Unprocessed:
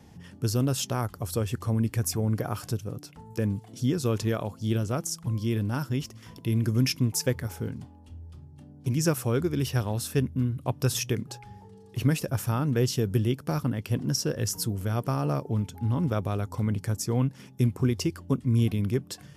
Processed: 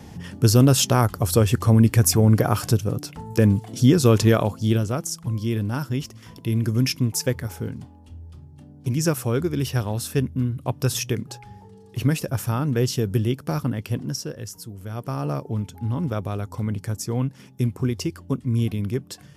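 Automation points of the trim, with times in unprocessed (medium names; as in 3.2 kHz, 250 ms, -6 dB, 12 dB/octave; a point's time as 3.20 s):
4.43 s +10.5 dB
4.97 s +3 dB
13.83 s +3 dB
14.64 s -9 dB
15.22 s +1 dB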